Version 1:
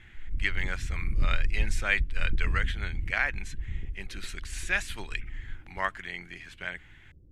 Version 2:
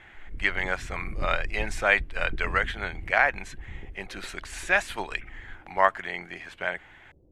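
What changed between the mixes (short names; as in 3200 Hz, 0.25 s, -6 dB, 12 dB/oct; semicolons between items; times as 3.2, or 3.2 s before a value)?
background: add low shelf 230 Hz -7 dB; master: add bell 710 Hz +14.5 dB 1.9 oct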